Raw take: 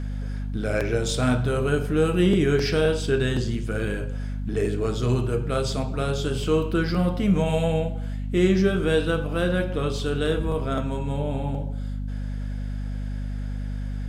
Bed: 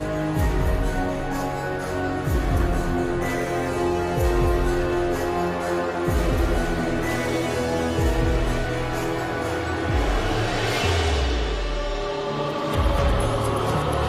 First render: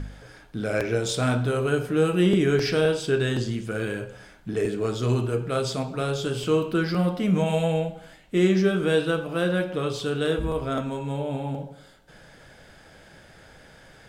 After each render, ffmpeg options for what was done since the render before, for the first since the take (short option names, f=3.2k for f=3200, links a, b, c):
-af "bandreject=f=50:t=h:w=4,bandreject=f=100:t=h:w=4,bandreject=f=150:t=h:w=4,bandreject=f=200:t=h:w=4,bandreject=f=250:t=h:w=4"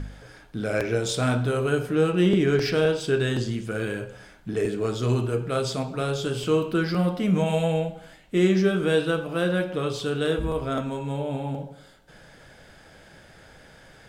-filter_complex "[0:a]asettb=1/sr,asplit=3[a][b][c];[a]atrim=end=1.954[d];[b]atrim=start=1.95:end=3.01,asetpts=PTS-STARTPTS,afade=t=in:d=0.004:c=qsin,afade=t=out:st=1.056:d=0.004:c=qsin,adynamicsmooth=sensitivity=5.5:basefreq=5.7k[e];[c]atrim=start=3.006[f];[d][e]acrossfade=d=0.004:c1=hsin:c2=qsin[g];[g][f]acrossfade=d=0.004:c1=qsin:c2=hsin"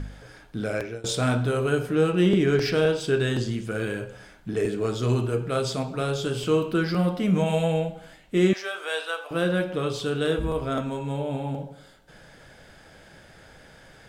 -filter_complex "[0:a]asettb=1/sr,asplit=3[a][b][c];[a]atrim=end=8.534[d];[b]atrim=start=8.53:end=9.31,asetpts=PTS-STARTPTS,afade=t=in:d=0.004:c=qsin,afade=t=out:st=0.776:d=0.004:c=qsin,highpass=f=640:w=0.5412,highpass=f=640:w=1.3066[e];[c]atrim=start=9.306[f];[d][e]acrossfade=d=0.004:c1=hsin:c2=qsin[g];[g][f]acrossfade=d=0.004:c1=qsin:c2=hsin,asplit=2[h][i];[h]atrim=end=1.04,asetpts=PTS-STARTPTS,afade=t=out:st=0.63:d=0.41:silence=0.0794328[j];[i]atrim=start=1.04,asetpts=PTS-STARTPTS,afade=t=in:d=0.004:c=hsin:silence=0.0794328[k];[j][k]concat=n=2:v=0:a=1"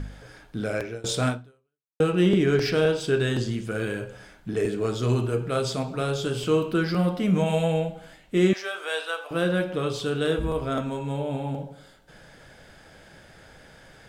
-filter_complex "[0:a]asplit=2[a][b];[a]atrim=end=2,asetpts=PTS-STARTPTS,afade=t=out:st=1.28:d=0.72:c=exp[c];[b]atrim=start=2,asetpts=PTS-STARTPTS,afade=t=in:d=0.004:c=hsin[d];[c][d]concat=n=2:v=0:a=1"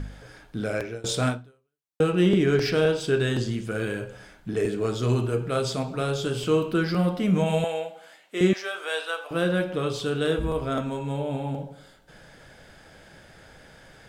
-filter_complex "[0:a]asettb=1/sr,asplit=3[a][b][c];[a]atrim=end=7.644[d];[b]atrim=start=7.64:end=8.41,asetpts=PTS-STARTPTS,afade=t=in:d=0.004:c=qsin,afade=t=out:st=0.766:d=0.004:c=qsin,highpass=530[e];[c]atrim=start=8.406[f];[d][e]acrossfade=d=0.004:c1=hsin:c2=qsin[g];[g][f]acrossfade=d=0.004:c1=qsin:c2=hsin"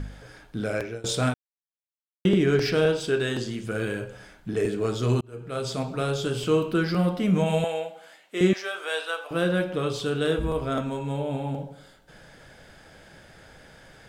-filter_complex "[0:a]asettb=1/sr,asplit=3[a][b][c];[a]atrim=end=3.084[d];[b]atrim=start=3.08:end=3.64,asetpts=PTS-STARTPTS,afade=t=in:d=0.004:c=qsin,afade=t=out:st=0.556:d=0.004:c=qsin,equalizer=f=62:w=0.5:g=-10.5[e];[c]atrim=start=3.636[f];[d][e]acrossfade=d=0.004:c1=hsin:c2=qsin[g];[g][f]acrossfade=d=0.004:c1=qsin:c2=hsin,asplit=4[h][i][j][k];[h]atrim=end=1.34,asetpts=PTS-STARTPTS,afade=t=out:st=1.336:d=0.004:c=hsin[l];[i]atrim=start=1.34:end=2.25,asetpts=PTS-STARTPTS,volume=0[m];[j]atrim=start=2.25:end=5.21,asetpts=PTS-STARTPTS,afade=t=in:d=0.004:c=hsin,afade=t=out:st=2.956:d=0.004:c=hsin[n];[k]atrim=start=5.21,asetpts=PTS-STARTPTS,afade=t=in:d=0.64[o];[l][m][n][o]concat=n=4:v=0:a=1"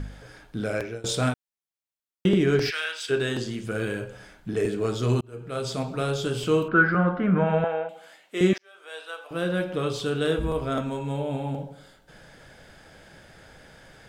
-filter_complex "[0:a]asplit=3[a][b][c];[a]afade=t=out:st=2.69:d=0.02[d];[b]highpass=f=1.8k:t=q:w=1.8,afade=t=in:st=2.69:d=0.02,afade=t=out:st=3.09:d=0.02[e];[c]afade=t=in:st=3.09:d=0.02[f];[d][e][f]amix=inputs=3:normalize=0,asettb=1/sr,asplit=3[g][h][i];[g]atrim=end=6.684[j];[h]atrim=start=6.68:end=7.89,asetpts=PTS-STARTPTS,afade=t=in:d=0.004:c=qsin,afade=t=out:st=1.206:d=0.004:c=qsin,lowpass=f=1.5k:t=q:w=5[k];[i]atrim=start=7.886[l];[j][k]acrossfade=d=0.004:c1=hsin:c2=qsin[m];[m][l]acrossfade=d=0.004:c1=qsin:c2=hsin,asplit=2[n][o];[n]atrim=end=8.58,asetpts=PTS-STARTPTS,afade=t=out:st=8.576:d=0.004:c=hsin[p];[o]atrim=start=8.58,asetpts=PTS-STARTPTS,afade=t=in:d=1.22[q];[p][q]concat=n=2:v=0:a=1"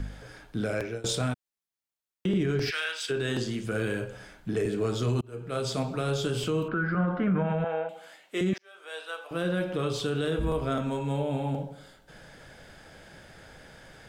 -filter_complex "[0:a]acrossover=split=220[a][b];[b]acompressor=threshold=-25dB:ratio=6[c];[a][c]amix=inputs=2:normalize=0,alimiter=limit=-19dB:level=0:latency=1:release=23"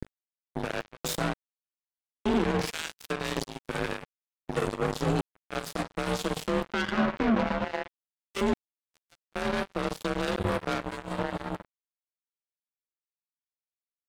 -af "afreqshift=38,acrusher=bits=3:mix=0:aa=0.5"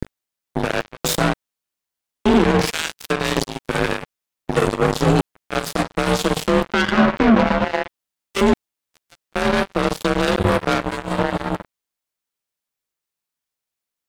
-af "volume=11dB"